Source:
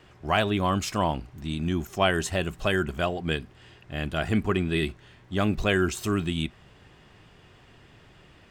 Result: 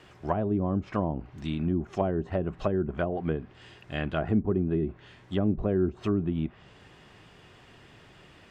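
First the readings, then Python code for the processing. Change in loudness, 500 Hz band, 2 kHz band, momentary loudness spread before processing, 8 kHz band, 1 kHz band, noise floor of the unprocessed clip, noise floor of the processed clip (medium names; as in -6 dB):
-2.5 dB, -1.5 dB, -12.5 dB, 9 LU, under -20 dB, -7.0 dB, -55 dBFS, -55 dBFS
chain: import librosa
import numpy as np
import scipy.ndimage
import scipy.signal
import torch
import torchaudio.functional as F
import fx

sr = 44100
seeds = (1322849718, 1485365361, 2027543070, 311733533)

y = fx.env_lowpass_down(x, sr, base_hz=440.0, full_db=-21.5)
y = fx.low_shelf(y, sr, hz=92.0, db=-7.0)
y = y * librosa.db_to_amplitude(1.5)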